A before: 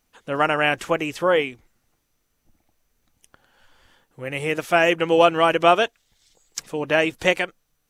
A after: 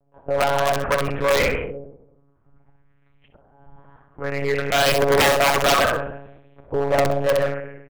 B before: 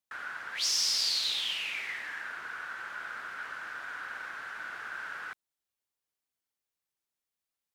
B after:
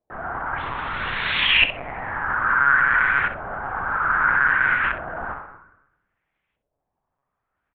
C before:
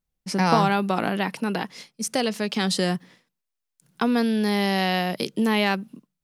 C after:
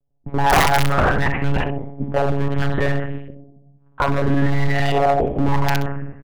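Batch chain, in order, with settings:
rectangular room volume 250 cubic metres, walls mixed, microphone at 0.81 metres
auto-filter low-pass saw up 0.61 Hz 570–2,600 Hz
high-frequency loss of the air 210 metres
one-pitch LPC vocoder at 8 kHz 140 Hz
wrap-around overflow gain 4 dB
on a send: repeating echo 64 ms, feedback 18%, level −11 dB
on the sum: hard clipping −16.5 dBFS
loudness normalisation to −20 LKFS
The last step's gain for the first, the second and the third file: +2.0, +16.0, +6.0 decibels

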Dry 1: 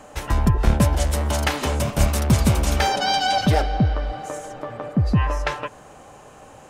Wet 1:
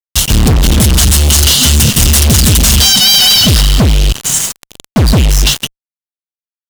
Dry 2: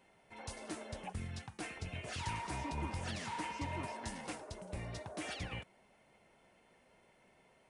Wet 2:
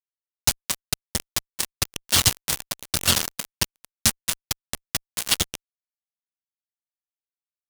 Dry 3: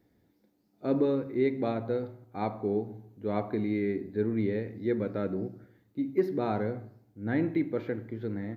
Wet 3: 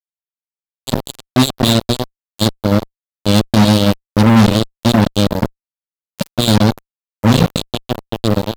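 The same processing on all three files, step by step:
brick-wall band-stop 260–2,700 Hz
high-shelf EQ 2,000 Hz +11.5 dB
fuzz pedal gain 41 dB, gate −33 dBFS
normalise the peak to −2 dBFS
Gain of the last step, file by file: +7.5, +8.5, +9.5 decibels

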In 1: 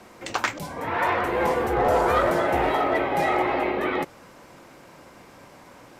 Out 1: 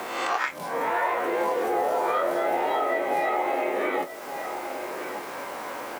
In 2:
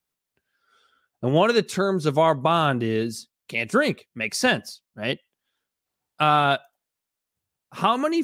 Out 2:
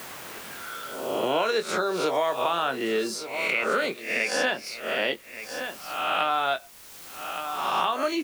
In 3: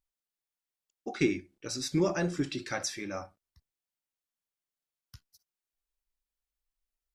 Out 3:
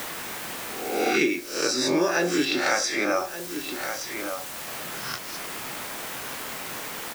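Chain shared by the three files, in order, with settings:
peak hold with a rise ahead of every peak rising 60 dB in 0.52 s
noise reduction from a noise print of the clip's start 6 dB
high-pass filter 410 Hz 12 dB per octave
high-shelf EQ 11,000 Hz −10 dB
downward compressor 2 to 1, threshold −37 dBFS
bit-depth reduction 10 bits, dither triangular
double-tracking delay 23 ms −9.5 dB
single-tap delay 1,171 ms −18 dB
multiband upward and downward compressor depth 70%
loudness normalisation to −27 LKFS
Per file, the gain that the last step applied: +6.5, +6.5, +16.0 decibels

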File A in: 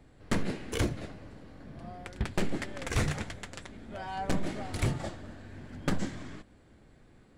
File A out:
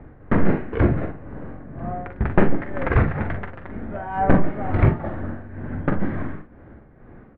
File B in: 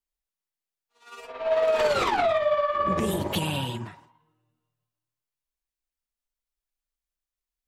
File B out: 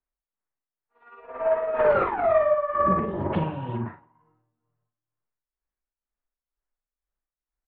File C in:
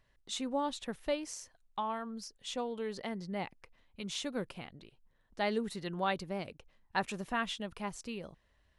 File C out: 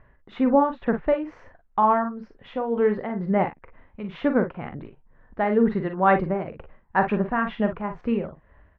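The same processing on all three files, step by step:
low-pass filter 1,800 Hz 24 dB per octave
amplitude tremolo 2.1 Hz, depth 63%
ambience of single reflections 43 ms −8.5 dB, 56 ms −13.5 dB
loudness normalisation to −24 LKFS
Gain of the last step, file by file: +14.5, +4.0, +17.5 decibels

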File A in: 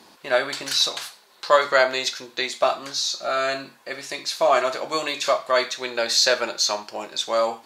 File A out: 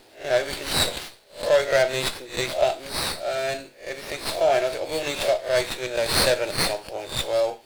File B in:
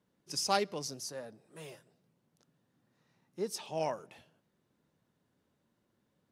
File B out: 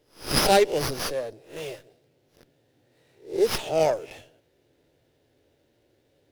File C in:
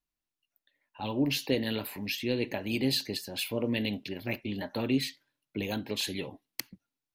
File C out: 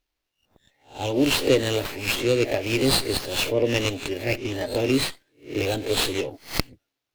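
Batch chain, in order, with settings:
peak hold with a rise ahead of every peak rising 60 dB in 0.34 s
phaser with its sweep stopped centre 470 Hz, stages 4
windowed peak hold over 5 samples
loudness normalisation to −24 LKFS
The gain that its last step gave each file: +1.0, +14.0, +11.0 decibels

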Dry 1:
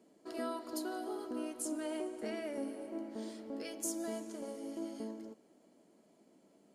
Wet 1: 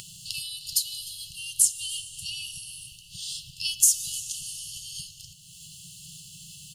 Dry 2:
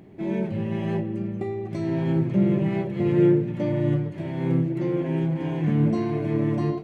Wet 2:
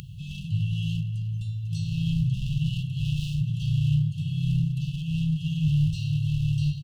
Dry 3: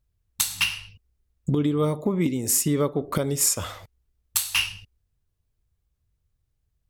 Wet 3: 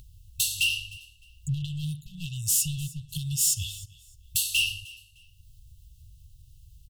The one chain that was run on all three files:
dynamic equaliser 2,500 Hz, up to +4 dB, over −46 dBFS, Q 1.6
in parallel at +2 dB: upward compression, threshold −27 dBFS
on the sum: hard clipping −14.5 dBFS
linear-phase brick-wall band-stop 160–2,600 Hz
repeating echo 305 ms, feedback 23%, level −21 dB
loudness normalisation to −27 LKFS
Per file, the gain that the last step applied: +11.5, +0.5, −5.5 decibels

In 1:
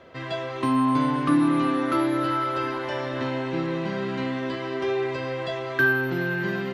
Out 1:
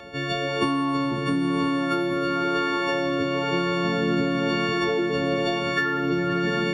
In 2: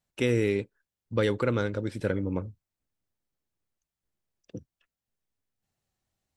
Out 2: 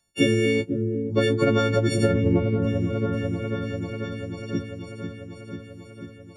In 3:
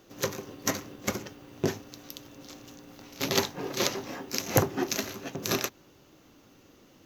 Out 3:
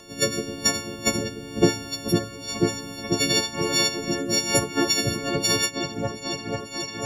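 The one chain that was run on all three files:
every partial snapped to a pitch grid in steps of 4 semitones
in parallel at +3 dB: speech leveller within 3 dB 0.5 s
on the sum: rotating-speaker cabinet horn 1 Hz
low-pass filter 9,300 Hz 12 dB per octave
on a send: echo whose low-pass opens from repeat to repeat 492 ms, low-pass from 400 Hz, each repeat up 1 octave, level −6 dB
on the sum: downward compressor 10 to 1, threshold −19 dBFS
harmonic and percussive parts rebalanced percussive +8 dB
loudness normalisation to −24 LKFS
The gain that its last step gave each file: −2.0, +1.5, 0.0 decibels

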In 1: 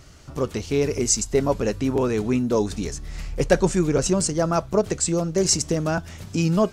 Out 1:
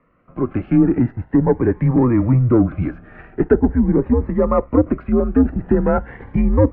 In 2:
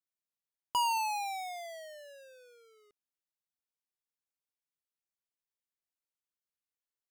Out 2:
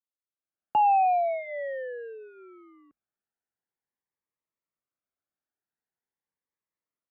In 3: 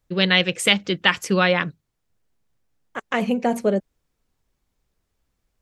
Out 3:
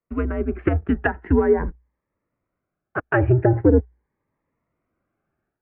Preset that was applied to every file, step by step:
treble cut that deepens with the level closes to 660 Hz, closed at −15 dBFS
high-pass filter 58 Hz 12 dB per octave
low-shelf EQ 160 Hz −9 dB
mains-hum notches 60/120/180 Hz
automatic gain control gain up to 11.5 dB
leveller curve on the samples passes 1
single-sideband voice off tune −120 Hz 160–2,100 Hz
phaser whose notches keep moving one way rising 0.43 Hz
level −1.5 dB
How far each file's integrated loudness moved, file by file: +5.0, +8.0, −0.5 LU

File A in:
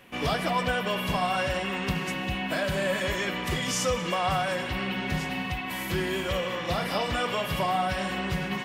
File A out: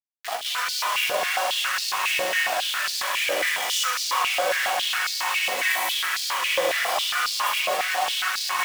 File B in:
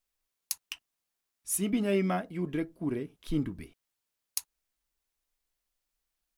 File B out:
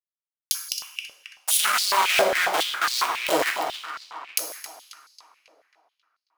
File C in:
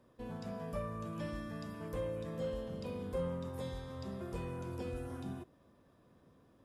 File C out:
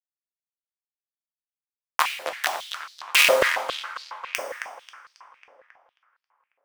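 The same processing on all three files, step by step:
fade in at the beginning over 1.34 s
high-shelf EQ 3,500 Hz +5 dB
in parallel at +2 dB: compressor whose output falls as the input rises −33 dBFS, ratio −0.5
on the sum: bit reduction 4 bits
on a send: tape delay 271 ms, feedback 61%, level −6.5 dB, low-pass 4,500 Hz
on the sum: coupled-rooms reverb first 0.82 s, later 2.3 s, from −27 dB, DRR 2.5 dB
high-pass on a step sequencer 7.3 Hz 550–4,500 Hz
loudness normalisation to −23 LKFS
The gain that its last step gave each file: −7.0, +0.5, +11.0 decibels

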